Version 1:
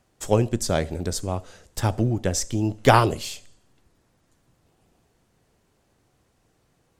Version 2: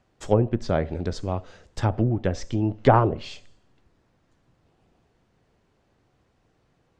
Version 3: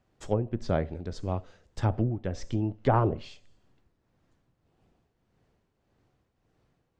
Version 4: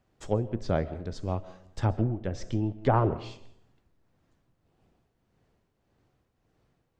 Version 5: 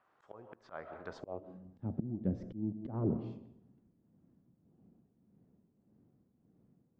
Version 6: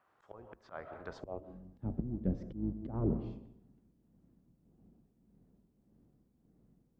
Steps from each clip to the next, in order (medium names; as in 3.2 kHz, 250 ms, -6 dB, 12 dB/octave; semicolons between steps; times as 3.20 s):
Bessel low-pass 3.9 kHz, order 2; low-pass that closes with the level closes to 1.1 kHz, closed at -16 dBFS
tremolo triangle 1.7 Hz, depth 60%; bass shelf 350 Hz +3 dB; trim -4.5 dB
reverberation RT60 0.70 s, pre-delay 95 ms, DRR 17 dB
slow attack 437 ms; band-pass sweep 1.2 kHz -> 210 Hz, 1.08–1.58 s; trim +10 dB
octave divider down 2 oct, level -6 dB